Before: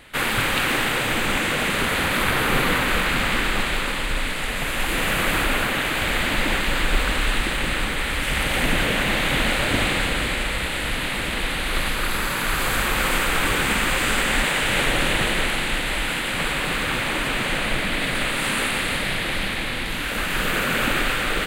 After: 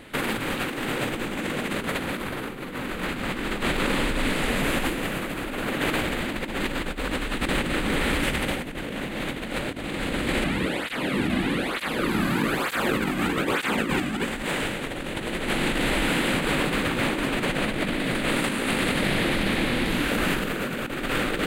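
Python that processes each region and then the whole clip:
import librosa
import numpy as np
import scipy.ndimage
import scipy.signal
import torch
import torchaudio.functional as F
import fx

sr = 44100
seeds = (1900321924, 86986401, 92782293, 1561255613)

y = fx.chain(x, sr, fx.bass_treble(bass_db=5, treble_db=-5),
    fx.flanger_cancel(hz=1.1, depth_ms=2.3), at=(10.44, 14.25))
y = fx.peak_eq(y, sr, hz=280.0, db=11.0, octaves=2.3)
y = fx.over_compress(y, sr, threshold_db=-21.0, ratio=-0.5)
y = y * librosa.db_to_amplitude(-4.5)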